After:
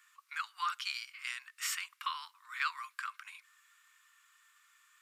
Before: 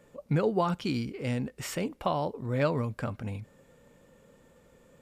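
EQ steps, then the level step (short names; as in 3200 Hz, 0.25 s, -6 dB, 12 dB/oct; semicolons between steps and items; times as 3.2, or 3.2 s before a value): steep high-pass 1100 Hz 72 dB/oct; +2.5 dB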